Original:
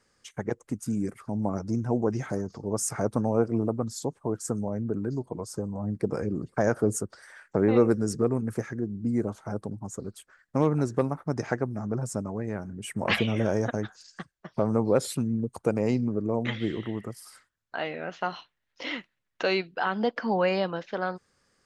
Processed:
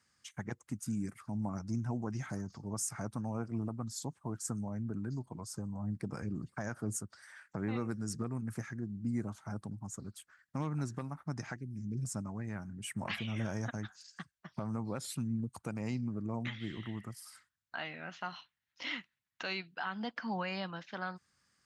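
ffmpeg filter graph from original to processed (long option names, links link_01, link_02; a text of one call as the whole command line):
ffmpeg -i in.wav -filter_complex "[0:a]asettb=1/sr,asplit=3[link_01][link_02][link_03];[link_01]atrim=end=11.564[link_04];[link_02]atrim=start=11.56:end=12.05,asetpts=PTS-STARTPTS,afade=type=in:duration=0.004:curve=qsin,afade=type=out:start_time=0.486:duration=0.004:curve=qsin,asuperstop=centerf=950:order=8:qfactor=0.55,equalizer=frequency=1200:width=1.1:gain=-5.5[link_05];[link_03]atrim=start=12.046[link_06];[link_04][link_05]acrossfade=duration=0.004:curve1=hsin:curve2=qsin[link_07];[link_07][link_06]acrossfade=duration=0.004:curve1=qsin:curve2=hsin,highpass=70,equalizer=frequency=460:width_type=o:width=1.2:gain=-14.5,alimiter=limit=-22dB:level=0:latency=1:release=360,volume=-3.5dB" out.wav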